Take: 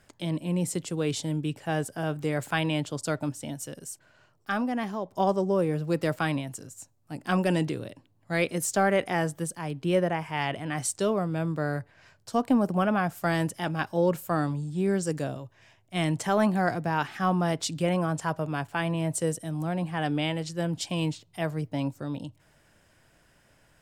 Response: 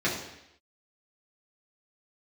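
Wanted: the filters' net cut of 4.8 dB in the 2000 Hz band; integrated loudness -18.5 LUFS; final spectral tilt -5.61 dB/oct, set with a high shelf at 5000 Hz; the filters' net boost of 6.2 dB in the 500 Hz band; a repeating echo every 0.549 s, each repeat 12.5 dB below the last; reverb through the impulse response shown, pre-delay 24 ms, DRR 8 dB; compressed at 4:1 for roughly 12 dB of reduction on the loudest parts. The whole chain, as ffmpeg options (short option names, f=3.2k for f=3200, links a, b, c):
-filter_complex "[0:a]equalizer=f=500:t=o:g=8,equalizer=f=2k:t=o:g=-7.5,highshelf=f=5k:g=3.5,acompressor=threshold=-29dB:ratio=4,aecho=1:1:549|1098|1647:0.237|0.0569|0.0137,asplit=2[a][b];[1:a]atrim=start_sample=2205,adelay=24[c];[b][c]afir=irnorm=-1:irlink=0,volume=-20dB[d];[a][d]amix=inputs=2:normalize=0,volume=13.5dB"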